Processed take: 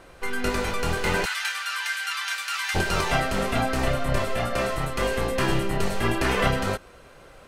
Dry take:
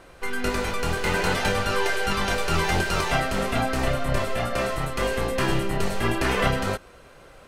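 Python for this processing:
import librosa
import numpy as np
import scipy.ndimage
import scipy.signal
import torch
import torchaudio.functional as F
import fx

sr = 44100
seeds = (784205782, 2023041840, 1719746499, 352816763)

y = fx.highpass(x, sr, hz=1300.0, slope=24, at=(1.24, 2.74), fade=0.02)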